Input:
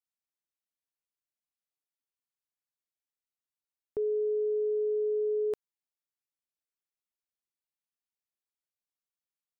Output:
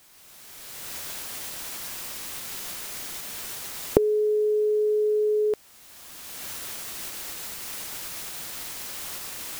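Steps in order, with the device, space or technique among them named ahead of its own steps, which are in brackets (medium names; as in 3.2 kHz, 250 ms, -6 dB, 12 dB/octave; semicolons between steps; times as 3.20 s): cheap recorder with automatic gain (white noise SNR 26 dB; recorder AGC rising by 22 dB/s); trim +6.5 dB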